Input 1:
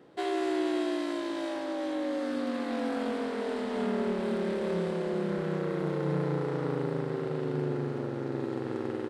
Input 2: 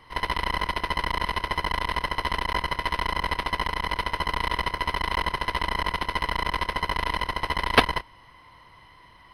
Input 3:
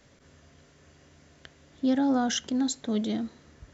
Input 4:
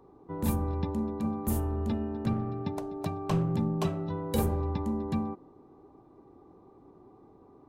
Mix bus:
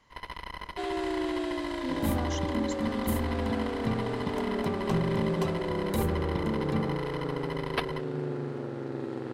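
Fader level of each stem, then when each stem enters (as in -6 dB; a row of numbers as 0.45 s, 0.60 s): -2.0 dB, -13.5 dB, -11.0 dB, -1.5 dB; 0.60 s, 0.00 s, 0.00 s, 1.60 s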